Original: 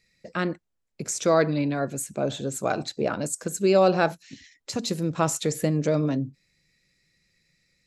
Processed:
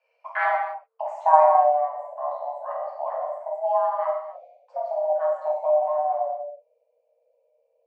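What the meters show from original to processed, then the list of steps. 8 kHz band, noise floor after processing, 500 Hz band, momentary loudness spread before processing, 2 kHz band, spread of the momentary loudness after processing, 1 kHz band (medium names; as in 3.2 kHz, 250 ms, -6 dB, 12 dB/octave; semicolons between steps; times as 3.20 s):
under -35 dB, -71 dBFS, +1.5 dB, 13 LU, 0.0 dB, 15 LU, +10.0 dB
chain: frequency shift +450 Hz; low-pass sweep 1.5 kHz -> 490 Hz, 0.63–1.78 s; gated-style reverb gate 320 ms falling, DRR -5 dB; trim -3.5 dB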